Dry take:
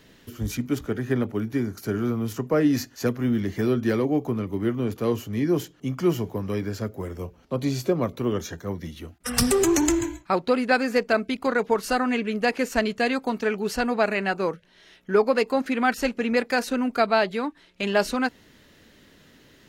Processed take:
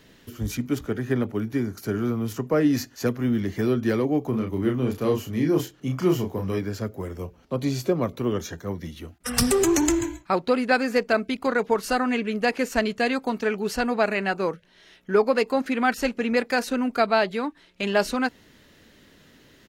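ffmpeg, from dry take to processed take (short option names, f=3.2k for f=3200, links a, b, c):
-filter_complex "[0:a]asplit=3[a][b][c];[a]afade=t=out:st=4.32:d=0.02[d];[b]asplit=2[e][f];[f]adelay=32,volume=-4dB[g];[e][g]amix=inputs=2:normalize=0,afade=t=in:st=4.32:d=0.02,afade=t=out:st=6.58:d=0.02[h];[c]afade=t=in:st=6.58:d=0.02[i];[d][h][i]amix=inputs=3:normalize=0"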